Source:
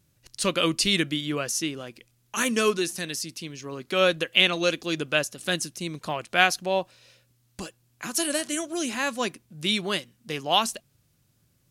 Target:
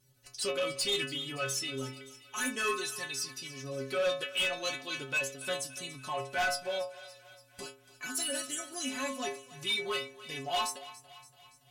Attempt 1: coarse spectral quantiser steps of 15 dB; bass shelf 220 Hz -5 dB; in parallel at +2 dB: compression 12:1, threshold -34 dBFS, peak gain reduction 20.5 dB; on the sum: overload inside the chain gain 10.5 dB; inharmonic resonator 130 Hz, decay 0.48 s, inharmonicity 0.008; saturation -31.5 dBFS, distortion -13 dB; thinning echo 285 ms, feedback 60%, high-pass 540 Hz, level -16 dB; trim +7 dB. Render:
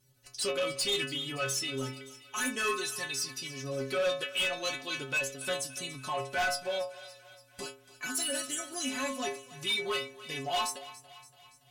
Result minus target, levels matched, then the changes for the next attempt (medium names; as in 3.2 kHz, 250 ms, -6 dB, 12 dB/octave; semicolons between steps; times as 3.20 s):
compression: peak gain reduction -9.5 dB
change: compression 12:1, threshold -44.5 dBFS, peak gain reduction 30 dB